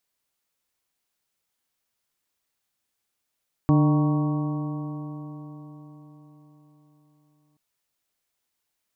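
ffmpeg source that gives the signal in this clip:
ffmpeg -f lavfi -i "aevalsrc='0.15*pow(10,-3*t/4.61)*sin(2*PI*148.24*t)+0.126*pow(10,-3*t/4.61)*sin(2*PI*297.89*t)+0.02*pow(10,-3*t/4.61)*sin(2*PI*450.35*t)+0.0266*pow(10,-3*t/4.61)*sin(2*PI*606.97*t)+0.0224*pow(10,-3*t/4.61)*sin(2*PI*769.03*t)+0.0188*pow(10,-3*t/4.61)*sin(2*PI*937.75*t)+0.0299*pow(10,-3*t/4.61)*sin(2*PI*1114.27*t)':duration=3.88:sample_rate=44100" out.wav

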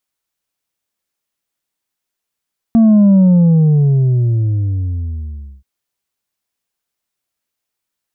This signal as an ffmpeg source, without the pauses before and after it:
ffmpeg -f lavfi -i "aevalsrc='0.501*clip((2.88-t)/2.47,0,1)*tanh(1.5*sin(2*PI*230*2.88/log(65/230)*(exp(log(65/230)*t/2.88)-1)))/tanh(1.5)':duration=2.88:sample_rate=44100" out.wav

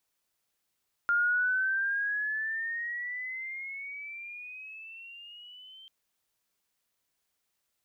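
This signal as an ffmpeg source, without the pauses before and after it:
ffmpeg -f lavfi -i "aevalsrc='pow(10,(-22.5-25.5*t/4.79)/20)*sin(2*PI*1400*4.79/(14*log(2)/12)*(exp(14*log(2)/12*t/4.79)-1))':duration=4.79:sample_rate=44100" out.wav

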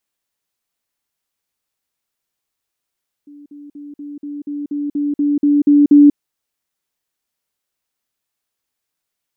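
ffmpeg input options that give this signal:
ffmpeg -f lavfi -i "aevalsrc='pow(10,(-36.5+3*floor(t/0.24))/20)*sin(2*PI*290*t)*clip(min(mod(t,0.24),0.19-mod(t,0.24))/0.005,0,1)':duration=2.88:sample_rate=44100" out.wav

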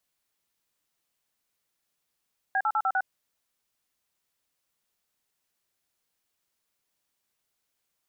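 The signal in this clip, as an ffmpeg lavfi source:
ffmpeg -f lavfi -i "aevalsrc='0.0562*clip(min(mod(t,0.1),0.057-mod(t,0.1))/0.002,0,1)*(eq(floor(t/0.1),0)*(sin(2*PI*770*mod(t,0.1))+sin(2*PI*1633*mod(t,0.1)))+eq(floor(t/0.1),1)*(sin(2*PI*852*mod(t,0.1))+sin(2*PI*1336*mod(t,0.1)))+eq(floor(t/0.1),2)*(sin(2*PI*852*mod(t,0.1))+sin(2*PI*1336*mod(t,0.1)))+eq(floor(t/0.1),3)*(sin(2*PI*770*mod(t,0.1))+sin(2*PI*1336*mod(t,0.1)))+eq(floor(t/0.1),4)*(sin(2*PI*770*mod(t,0.1))+sin(2*PI*1477*mod(t,0.1))))':duration=0.5:sample_rate=44100" out.wav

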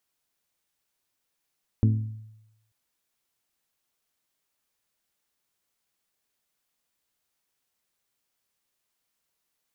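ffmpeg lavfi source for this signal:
ffmpeg -f lavfi -i "aevalsrc='0.168*pow(10,-3*t/0.91)*sin(2*PI*109*t)+0.0841*pow(10,-3*t/0.56)*sin(2*PI*218*t)+0.0422*pow(10,-3*t/0.493)*sin(2*PI*261.6*t)+0.0211*pow(10,-3*t/0.422)*sin(2*PI*327*t)+0.0106*pow(10,-3*t/0.345)*sin(2*PI*436*t)':duration=0.89:sample_rate=44100" out.wav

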